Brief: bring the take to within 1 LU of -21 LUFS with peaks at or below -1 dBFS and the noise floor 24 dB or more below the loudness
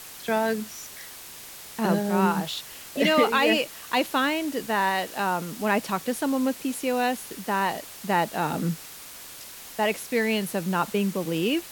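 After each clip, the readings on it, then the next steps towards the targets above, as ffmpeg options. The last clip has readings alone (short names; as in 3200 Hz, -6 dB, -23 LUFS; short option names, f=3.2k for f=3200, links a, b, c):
noise floor -43 dBFS; noise floor target -50 dBFS; loudness -25.5 LUFS; peak -9.0 dBFS; loudness target -21.0 LUFS
-> -af "afftdn=nr=7:nf=-43"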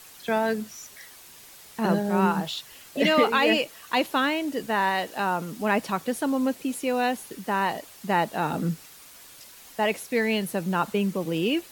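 noise floor -48 dBFS; noise floor target -50 dBFS
-> -af "afftdn=nr=6:nf=-48"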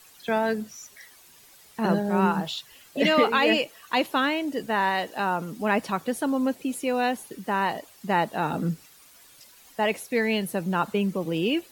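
noise floor -53 dBFS; loudness -26.0 LUFS; peak -9.5 dBFS; loudness target -21.0 LUFS
-> -af "volume=5dB"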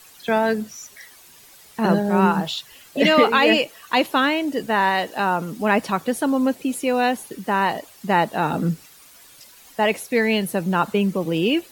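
loudness -21.0 LUFS; peak -4.5 dBFS; noise floor -48 dBFS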